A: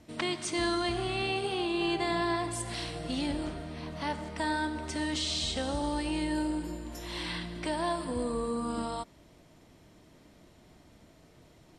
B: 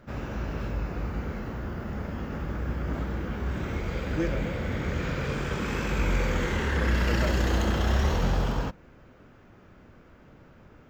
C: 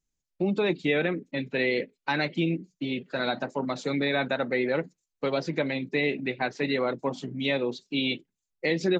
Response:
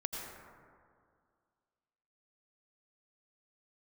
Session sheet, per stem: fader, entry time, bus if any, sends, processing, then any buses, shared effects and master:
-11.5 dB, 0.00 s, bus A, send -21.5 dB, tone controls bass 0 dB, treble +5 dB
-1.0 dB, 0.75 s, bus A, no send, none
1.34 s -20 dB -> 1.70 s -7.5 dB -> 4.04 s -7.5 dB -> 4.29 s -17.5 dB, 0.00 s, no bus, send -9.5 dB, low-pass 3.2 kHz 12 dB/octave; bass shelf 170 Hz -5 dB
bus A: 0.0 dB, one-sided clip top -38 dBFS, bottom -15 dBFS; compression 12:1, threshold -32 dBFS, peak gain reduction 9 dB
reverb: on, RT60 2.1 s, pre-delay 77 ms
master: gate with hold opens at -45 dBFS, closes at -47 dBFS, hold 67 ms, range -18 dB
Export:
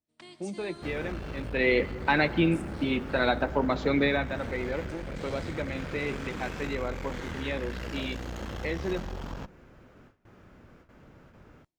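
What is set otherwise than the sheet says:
stem A -11.5 dB -> -18.5 dB; stem C -20.0 dB -> -9.5 dB; reverb return -7.0 dB

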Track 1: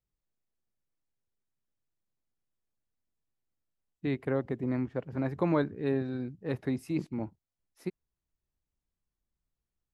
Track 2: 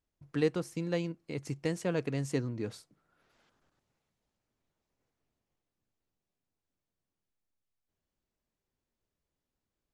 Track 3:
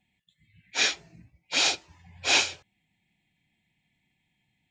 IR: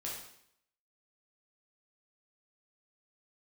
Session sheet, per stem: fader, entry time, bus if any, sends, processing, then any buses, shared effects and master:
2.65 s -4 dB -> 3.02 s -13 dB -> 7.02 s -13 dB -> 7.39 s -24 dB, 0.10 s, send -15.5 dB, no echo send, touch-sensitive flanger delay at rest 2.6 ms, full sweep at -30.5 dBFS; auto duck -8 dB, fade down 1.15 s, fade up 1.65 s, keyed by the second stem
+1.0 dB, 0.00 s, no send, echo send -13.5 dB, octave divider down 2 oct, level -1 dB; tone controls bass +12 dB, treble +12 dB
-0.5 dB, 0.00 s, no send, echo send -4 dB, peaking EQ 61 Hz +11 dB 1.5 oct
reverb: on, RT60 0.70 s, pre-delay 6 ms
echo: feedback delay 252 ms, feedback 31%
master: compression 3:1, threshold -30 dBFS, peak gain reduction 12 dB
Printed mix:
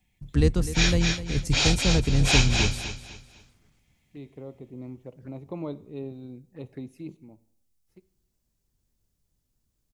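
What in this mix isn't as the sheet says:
stem 1 -4.0 dB -> +2.0 dB; master: missing compression 3:1, threshold -30 dBFS, peak gain reduction 12 dB

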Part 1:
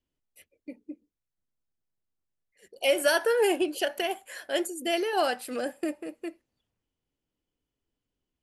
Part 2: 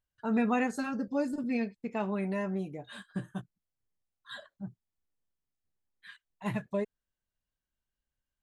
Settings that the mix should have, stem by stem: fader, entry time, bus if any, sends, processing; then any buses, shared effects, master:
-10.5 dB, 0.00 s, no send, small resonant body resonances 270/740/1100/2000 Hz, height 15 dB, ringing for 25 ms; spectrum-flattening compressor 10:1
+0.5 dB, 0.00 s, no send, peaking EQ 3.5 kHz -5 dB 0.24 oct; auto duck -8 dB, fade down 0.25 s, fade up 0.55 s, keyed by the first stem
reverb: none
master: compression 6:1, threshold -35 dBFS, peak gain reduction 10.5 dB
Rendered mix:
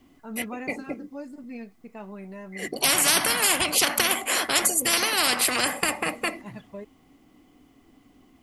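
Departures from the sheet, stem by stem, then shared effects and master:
stem 1 -10.5 dB -> -2.5 dB; master: missing compression 6:1, threshold -35 dBFS, peak gain reduction 10.5 dB

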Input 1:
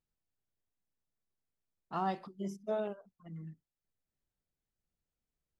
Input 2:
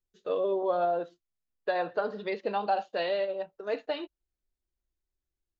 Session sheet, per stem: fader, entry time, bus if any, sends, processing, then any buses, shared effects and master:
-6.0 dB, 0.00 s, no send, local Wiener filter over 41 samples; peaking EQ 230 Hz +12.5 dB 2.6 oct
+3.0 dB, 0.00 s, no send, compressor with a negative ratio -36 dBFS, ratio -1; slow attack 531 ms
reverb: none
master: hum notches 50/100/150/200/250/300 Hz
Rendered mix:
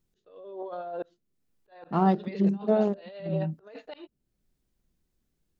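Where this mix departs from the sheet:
stem 1 -6.0 dB -> +4.5 dB; master: missing hum notches 50/100/150/200/250/300 Hz

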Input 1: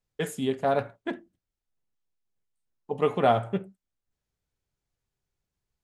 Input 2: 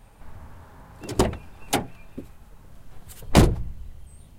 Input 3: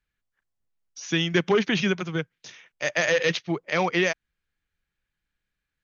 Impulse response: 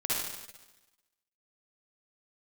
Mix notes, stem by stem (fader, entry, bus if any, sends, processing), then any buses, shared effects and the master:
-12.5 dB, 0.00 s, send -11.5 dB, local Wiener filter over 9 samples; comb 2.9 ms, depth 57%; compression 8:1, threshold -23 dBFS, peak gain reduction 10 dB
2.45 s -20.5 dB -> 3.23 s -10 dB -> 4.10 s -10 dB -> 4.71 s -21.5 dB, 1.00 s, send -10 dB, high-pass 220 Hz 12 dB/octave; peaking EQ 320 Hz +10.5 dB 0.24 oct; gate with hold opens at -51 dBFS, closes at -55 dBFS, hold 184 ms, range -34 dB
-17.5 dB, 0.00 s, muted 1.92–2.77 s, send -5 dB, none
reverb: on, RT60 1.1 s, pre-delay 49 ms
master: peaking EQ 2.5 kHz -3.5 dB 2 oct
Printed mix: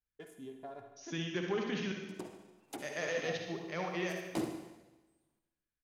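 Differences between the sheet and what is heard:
stem 1 -12.5 dB -> -21.0 dB; stem 2 -20.5 dB -> -27.5 dB

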